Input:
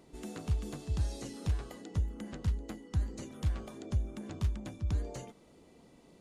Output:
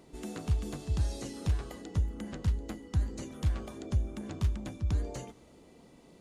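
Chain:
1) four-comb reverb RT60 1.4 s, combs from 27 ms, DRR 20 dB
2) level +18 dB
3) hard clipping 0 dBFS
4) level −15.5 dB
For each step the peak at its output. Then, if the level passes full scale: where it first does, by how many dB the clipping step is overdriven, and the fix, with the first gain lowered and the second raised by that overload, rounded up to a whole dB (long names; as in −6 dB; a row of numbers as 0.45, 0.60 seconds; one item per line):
−21.5, −3.5, −3.5, −19.0 dBFS
no step passes full scale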